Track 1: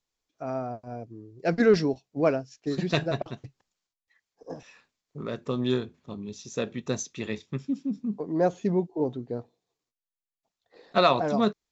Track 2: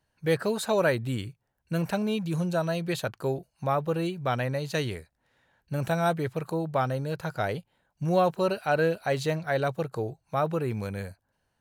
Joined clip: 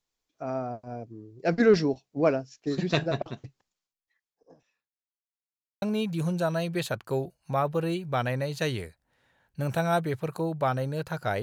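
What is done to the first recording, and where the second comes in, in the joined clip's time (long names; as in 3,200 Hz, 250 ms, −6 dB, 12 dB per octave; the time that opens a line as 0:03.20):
track 1
0:03.47–0:05.14: fade out quadratic
0:05.14–0:05.82: silence
0:05.82: continue with track 2 from 0:01.95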